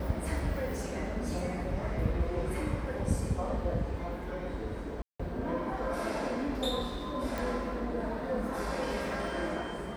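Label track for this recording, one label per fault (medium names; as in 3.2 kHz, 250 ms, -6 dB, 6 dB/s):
5.020000	5.200000	dropout 175 ms
7.380000	7.380000	pop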